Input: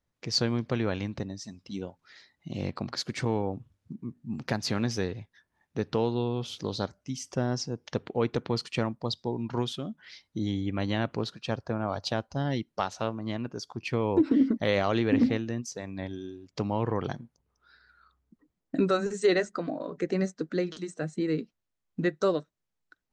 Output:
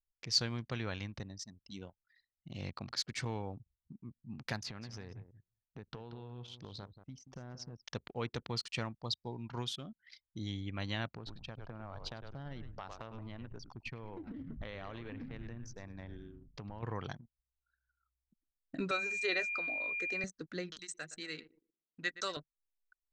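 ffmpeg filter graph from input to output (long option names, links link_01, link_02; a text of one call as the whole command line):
ffmpeg -i in.wav -filter_complex "[0:a]asettb=1/sr,asplit=3[link_01][link_02][link_03];[link_01]atrim=end=4.634[link_04];[link_02]atrim=start=4.63:end=7.84,asetpts=PTS-STARTPTS,afade=type=in:duration=0.004:curve=qsin,afade=type=out:start_time=3.206:duration=0.004:curve=qsin,lowpass=frequency=1800:poles=1,acompressor=threshold=-32dB:ratio=5:attack=3.2:release=140:knee=1:detection=peak,aecho=1:1:182|364:0.299|0.0537,atrim=end_sample=141561[link_05];[link_03]atrim=start=7.836[link_06];[link_04][link_05]acrossfade=duration=0.004:curve1=hsin:curve2=qsin[link_07];[link_07][link_06]acrossfade=duration=0.004:curve1=qsin:curve2=hsin,asettb=1/sr,asplit=3[link_08][link_09][link_10];[link_08]atrim=end=11.104[link_11];[link_09]atrim=start=11.1:end=16.83,asetpts=PTS-STARTPTS,afade=type=in:duration=0.004:curve=qsin,afade=type=out:start_time=5.726:duration=0.004:curve=qsin,lowpass=frequency=1800:poles=1,asplit=6[link_12][link_13][link_14][link_15][link_16][link_17];[link_13]adelay=102,afreqshift=-120,volume=-10.5dB[link_18];[link_14]adelay=204,afreqshift=-240,volume=-16.9dB[link_19];[link_15]adelay=306,afreqshift=-360,volume=-23.3dB[link_20];[link_16]adelay=408,afreqshift=-480,volume=-29.6dB[link_21];[link_17]adelay=510,afreqshift=-600,volume=-36dB[link_22];[link_12][link_18][link_19][link_20][link_21][link_22]amix=inputs=6:normalize=0,atrim=end_sample=252693,acompressor=threshold=-30dB:ratio=6:attack=3.2:release=140:knee=1:detection=peak[link_23];[link_10]atrim=start=16.826[link_24];[link_11][link_23]acrossfade=duration=0.004:curve1=hsin:curve2=qsin[link_25];[link_25][link_24]acrossfade=duration=0.004:curve1=qsin:curve2=hsin,asettb=1/sr,asplit=3[link_26][link_27][link_28];[link_26]atrim=end=18.914[link_29];[link_27]atrim=start=18.91:end=20.24,asetpts=PTS-STARTPTS,afade=type=in:duration=0.004:curve=qsin,afade=type=out:start_time=1.326:duration=0.004:curve=qsin,highpass=340,acrossover=split=6100[link_30][link_31];[link_31]acompressor=threshold=-58dB:ratio=4:attack=1:release=60[link_32];[link_30][link_32]amix=inputs=2:normalize=0,aeval=exprs='val(0)+0.0282*sin(2*PI*2400*n/s)':channel_layout=same[link_33];[link_28]atrim=start=20.236[link_34];[link_29][link_33]acrossfade=duration=0.004:curve1=hsin:curve2=qsin[link_35];[link_35][link_34]acrossfade=duration=0.004:curve1=qsin:curve2=hsin,asettb=1/sr,asplit=3[link_36][link_37][link_38];[link_36]atrim=end=20.794[link_39];[link_37]atrim=start=20.79:end=22.37,asetpts=PTS-STARTPTS,afade=type=in:duration=0.004:curve=qsin,afade=type=out:start_time=1.576:duration=0.004:curve=qsin,highpass=frequency=230:poles=1,tiltshelf=frequency=1100:gain=-7.5,asplit=2[link_40][link_41];[link_41]adelay=117,lowpass=frequency=4200:poles=1,volume=-14dB,asplit=2[link_42][link_43];[link_43]adelay=117,lowpass=frequency=4200:poles=1,volume=0.54,asplit=2[link_44][link_45];[link_45]adelay=117,lowpass=frequency=4200:poles=1,volume=0.54,asplit=2[link_46][link_47];[link_47]adelay=117,lowpass=frequency=4200:poles=1,volume=0.54,asplit=2[link_48][link_49];[link_49]adelay=117,lowpass=frequency=4200:poles=1,volume=0.54[link_50];[link_40][link_42][link_44][link_46][link_48][link_50]amix=inputs=6:normalize=0,atrim=end_sample=69678[link_51];[link_38]atrim=start=22.366[link_52];[link_39][link_51]acrossfade=duration=0.004:curve1=hsin:curve2=qsin[link_53];[link_53][link_52]acrossfade=duration=0.004:curve1=qsin:curve2=hsin,anlmdn=0.0398,equalizer=frequency=350:width=0.37:gain=-11.5,volume=-2dB" out.wav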